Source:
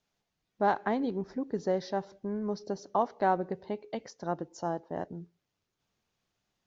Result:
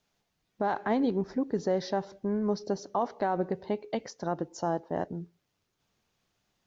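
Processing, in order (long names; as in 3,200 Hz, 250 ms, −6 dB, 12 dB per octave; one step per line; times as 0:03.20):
brickwall limiter −22.5 dBFS, peak gain reduction 9.5 dB
level +4.5 dB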